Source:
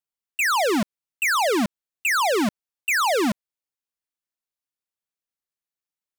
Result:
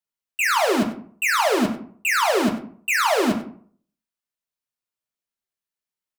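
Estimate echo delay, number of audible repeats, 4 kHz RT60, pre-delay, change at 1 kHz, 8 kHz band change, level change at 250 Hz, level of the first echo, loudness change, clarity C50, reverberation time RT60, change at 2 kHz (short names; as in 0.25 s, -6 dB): 96 ms, 1, 0.30 s, 3 ms, +1.5 dB, 0.0 dB, +1.5 dB, -14.5 dB, +1.0 dB, 9.0 dB, 0.55 s, +1.0 dB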